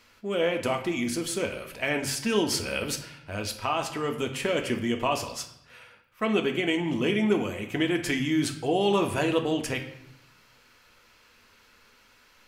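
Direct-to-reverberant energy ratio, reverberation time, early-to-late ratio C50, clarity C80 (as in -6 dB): 4.0 dB, 0.80 s, 9.5 dB, 12.5 dB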